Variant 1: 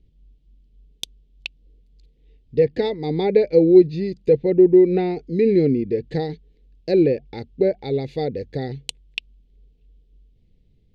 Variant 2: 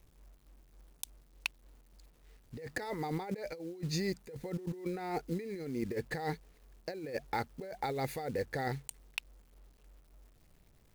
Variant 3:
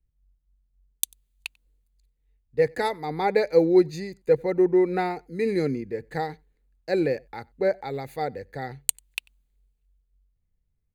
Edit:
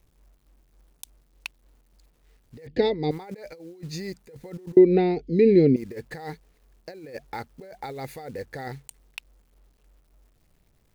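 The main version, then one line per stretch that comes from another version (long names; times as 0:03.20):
2
0:02.67–0:03.11: punch in from 1
0:04.77–0:05.76: punch in from 1
not used: 3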